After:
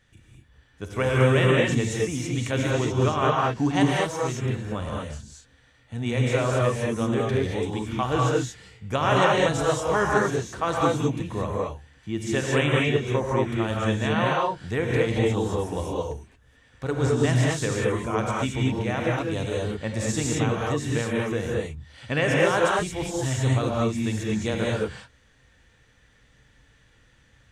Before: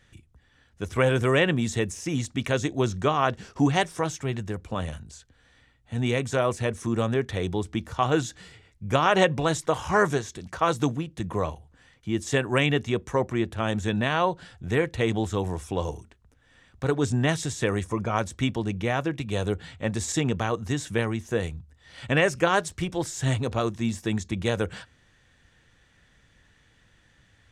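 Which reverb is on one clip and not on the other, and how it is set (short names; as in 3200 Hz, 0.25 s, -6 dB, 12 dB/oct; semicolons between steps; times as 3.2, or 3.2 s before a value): non-linear reverb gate 0.25 s rising, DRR -3.5 dB; gain -3.5 dB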